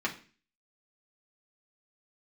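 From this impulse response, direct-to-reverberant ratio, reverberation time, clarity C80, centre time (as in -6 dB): -3.5 dB, 0.40 s, 17.5 dB, 12 ms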